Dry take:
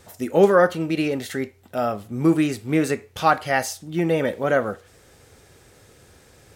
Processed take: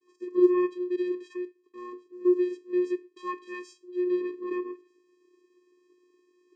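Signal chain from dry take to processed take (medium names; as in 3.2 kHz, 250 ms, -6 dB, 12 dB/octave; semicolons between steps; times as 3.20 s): expander -49 dBFS; vocoder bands 8, square 359 Hz; trim -6.5 dB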